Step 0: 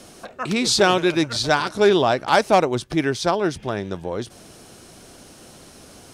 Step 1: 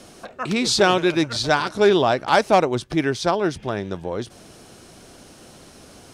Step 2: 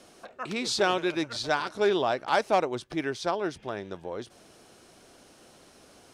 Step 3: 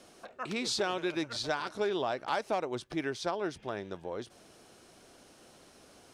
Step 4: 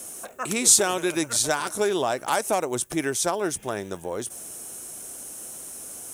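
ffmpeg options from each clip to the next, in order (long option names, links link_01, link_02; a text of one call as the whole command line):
ffmpeg -i in.wav -af "highshelf=frequency=8300:gain=-5" out.wav
ffmpeg -i in.wav -af "bass=frequency=250:gain=-7,treble=frequency=4000:gain=-2,volume=-7.5dB" out.wav
ffmpeg -i in.wav -af "acompressor=threshold=-25dB:ratio=6,volume=-2.5dB" out.wav
ffmpeg -i in.wav -af "aexciter=amount=15.1:drive=2.7:freq=6700,volume=7.5dB" out.wav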